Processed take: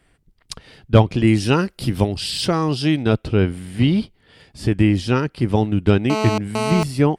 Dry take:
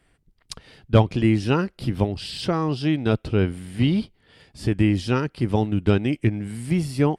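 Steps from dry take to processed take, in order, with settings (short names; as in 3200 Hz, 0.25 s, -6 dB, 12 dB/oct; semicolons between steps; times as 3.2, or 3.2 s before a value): 1.27–3.03 high shelf 4800 Hz +11 dB; 6.1–6.83 GSM buzz -25 dBFS; gain +3.5 dB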